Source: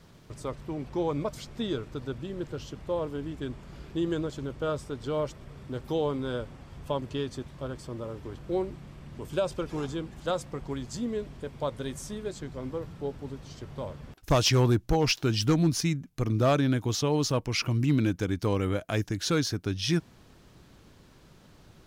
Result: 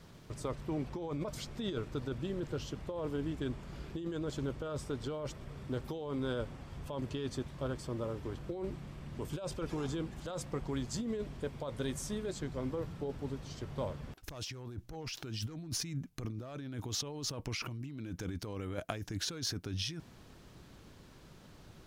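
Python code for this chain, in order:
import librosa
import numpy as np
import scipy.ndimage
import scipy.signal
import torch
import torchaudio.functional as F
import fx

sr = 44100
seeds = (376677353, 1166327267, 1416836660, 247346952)

y = fx.over_compress(x, sr, threshold_db=-33.0, ratio=-1.0)
y = y * librosa.db_to_amplitude(-5.0)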